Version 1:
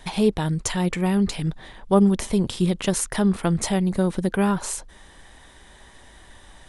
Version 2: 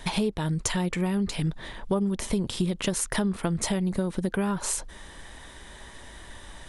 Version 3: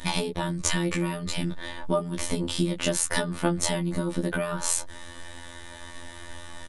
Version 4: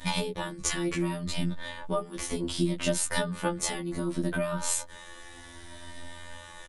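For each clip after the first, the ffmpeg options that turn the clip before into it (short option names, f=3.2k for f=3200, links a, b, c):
-af "bandreject=f=770:w=16,acompressor=threshold=-27dB:ratio=6,volume=3.5dB"
-filter_complex "[0:a]afftfilt=real='hypot(re,im)*cos(PI*b)':imag='0':win_size=2048:overlap=0.75,asplit=2[a][b];[b]adelay=15,volume=-3dB[c];[a][c]amix=inputs=2:normalize=0,volume=4.5dB"
-filter_complex "[0:a]asplit=2[a][b];[b]adelay=7.9,afreqshift=0.65[c];[a][c]amix=inputs=2:normalize=1"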